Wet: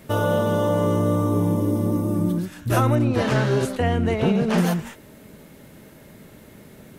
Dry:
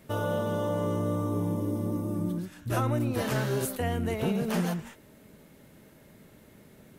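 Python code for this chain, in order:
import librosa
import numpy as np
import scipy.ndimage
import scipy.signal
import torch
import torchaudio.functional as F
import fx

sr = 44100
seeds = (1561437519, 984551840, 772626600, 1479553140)

y = fx.air_absorb(x, sr, metres=80.0, at=(2.95, 4.58))
y = y * 10.0 ** (8.5 / 20.0)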